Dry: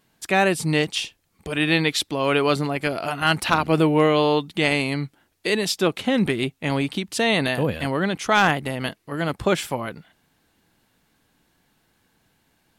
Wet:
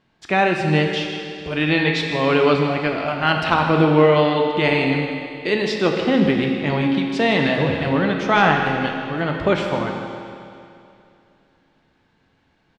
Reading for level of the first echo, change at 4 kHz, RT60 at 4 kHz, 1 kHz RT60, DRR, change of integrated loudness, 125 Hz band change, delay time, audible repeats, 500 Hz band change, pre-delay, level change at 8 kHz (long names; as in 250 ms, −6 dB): −13.5 dB, 0.0 dB, 2.5 s, 2.6 s, 1.5 dB, +3.0 dB, +4.0 dB, 158 ms, 1, +4.0 dB, 11 ms, below −10 dB